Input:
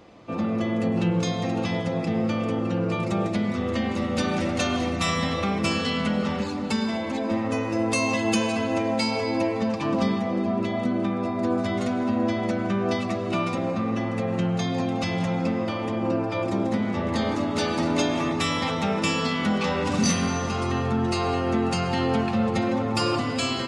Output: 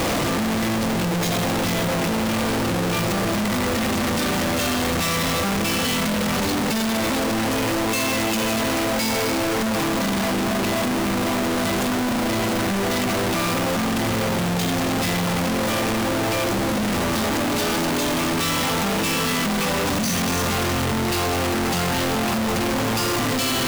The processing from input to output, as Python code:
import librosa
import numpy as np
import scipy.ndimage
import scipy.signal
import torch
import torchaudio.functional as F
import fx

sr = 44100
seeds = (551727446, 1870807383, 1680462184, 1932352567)

y = np.sign(x) * np.sqrt(np.mean(np.square(x)))
y = F.gain(torch.from_numpy(y), 3.0).numpy()